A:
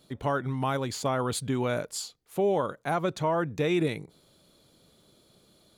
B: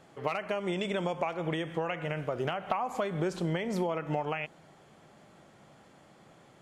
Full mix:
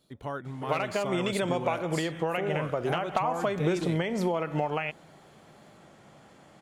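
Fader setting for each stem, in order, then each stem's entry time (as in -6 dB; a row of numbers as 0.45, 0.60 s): -7.5, +3.0 dB; 0.00, 0.45 s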